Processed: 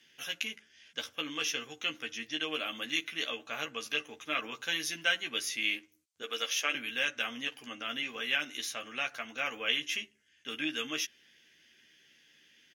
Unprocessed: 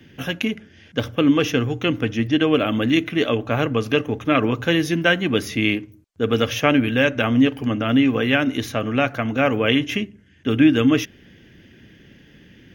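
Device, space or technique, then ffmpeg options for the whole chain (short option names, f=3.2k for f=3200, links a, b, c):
piezo pickup straight into a mixer: -filter_complex "[0:a]lowpass=8.9k,aderivative,asettb=1/sr,asplit=3[a][b][c];[a]atrim=end=6.224[d];[b]atrim=start=6.22:end=6.75,asetpts=PTS-STARTPTS,afade=t=in:d=0.004:c=qsin,afade=t=out:st=0.526:d=0.004:c=qsin,highpass=f=280:w=0.5412,highpass=f=280:w=1.3066[e];[c]atrim=start=6.746[f];[d][e]acrossfade=d=0.004:c1=hsin:c2=qsin[g];[g][f]acrossfade=d=0.004:c1=qsin:c2=hsin,asplit=2[h][i];[i]adelay=13,volume=-4.5dB[j];[h][j]amix=inputs=2:normalize=0"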